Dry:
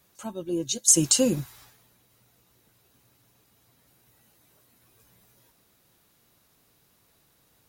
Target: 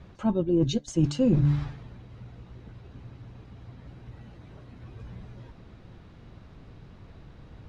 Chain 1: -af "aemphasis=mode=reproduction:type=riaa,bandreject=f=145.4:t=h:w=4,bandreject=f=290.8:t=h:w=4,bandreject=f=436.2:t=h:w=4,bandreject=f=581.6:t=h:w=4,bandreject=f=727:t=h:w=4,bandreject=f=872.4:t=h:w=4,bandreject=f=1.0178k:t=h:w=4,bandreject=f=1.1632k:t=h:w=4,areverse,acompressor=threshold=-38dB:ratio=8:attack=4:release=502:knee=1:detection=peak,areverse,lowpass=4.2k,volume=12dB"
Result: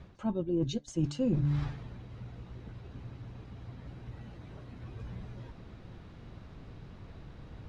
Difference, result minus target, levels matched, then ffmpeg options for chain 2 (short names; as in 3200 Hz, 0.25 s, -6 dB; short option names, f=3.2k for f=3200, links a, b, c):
compressor: peak gain reduction +7 dB
-af "aemphasis=mode=reproduction:type=riaa,bandreject=f=145.4:t=h:w=4,bandreject=f=290.8:t=h:w=4,bandreject=f=436.2:t=h:w=4,bandreject=f=581.6:t=h:w=4,bandreject=f=727:t=h:w=4,bandreject=f=872.4:t=h:w=4,bandreject=f=1.0178k:t=h:w=4,bandreject=f=1.1632k:t=h:w=4,areverse,acompressor=threshold=-30dB:ratio=8:attack=4:release=502:knee=1:detection=peak,areverse,lowpass=4.2k,volume=12dB"